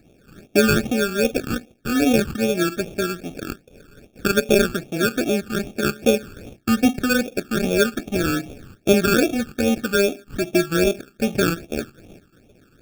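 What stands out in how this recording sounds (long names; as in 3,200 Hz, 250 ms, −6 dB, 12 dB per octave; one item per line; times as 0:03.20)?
aliases and images of a low sample rate 1,000 Hz, jitter 0%
phaser sweep stages 12, 2.5 Hz, lowest notch 630–1,600 Hz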